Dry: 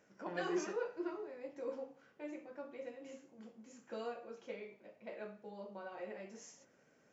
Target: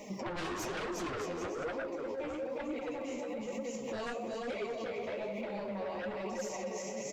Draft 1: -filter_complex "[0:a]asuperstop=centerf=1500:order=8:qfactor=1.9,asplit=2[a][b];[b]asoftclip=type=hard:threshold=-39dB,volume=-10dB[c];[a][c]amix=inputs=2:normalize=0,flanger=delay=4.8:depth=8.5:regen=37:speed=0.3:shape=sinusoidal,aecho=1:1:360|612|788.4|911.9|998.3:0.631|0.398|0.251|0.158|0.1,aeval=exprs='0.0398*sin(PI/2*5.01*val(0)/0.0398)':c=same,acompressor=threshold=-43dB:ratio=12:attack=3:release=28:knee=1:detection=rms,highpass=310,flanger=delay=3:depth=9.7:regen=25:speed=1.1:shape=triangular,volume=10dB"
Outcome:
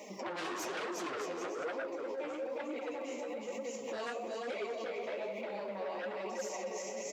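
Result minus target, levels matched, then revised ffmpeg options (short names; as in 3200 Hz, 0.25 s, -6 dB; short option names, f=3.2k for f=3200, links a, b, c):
250 Hz band -3.5 dB
-filter_complex "[0:a]asuperstop=centerf=1500:order=8:qfactor=1.9,asplit=2[a][b];[b]asoftclip=type=hard:threshold=-39dB,volume=-10dB[c];[a][c]amix=inputs=2:normalize=0,flanger=delay=4.8:depth=8.5:regen=37:speed=0.3:shape=sinusoidal,aecho=1:1:360|612|788.4|911.9|998.3:0.631|0.398|0.251|0.158|0.1,aeval=exprs='0.0398*sin(PI/2*5.01*val(0)/0.0398)':c=same,acompressor=threshold=-43dB:ratio=12:attack=3:release=28:knee=1:detection=rms,flanger=delay=3:depth=9.7:regen=25:speed=1.1:shape=triangular,volume=10dB"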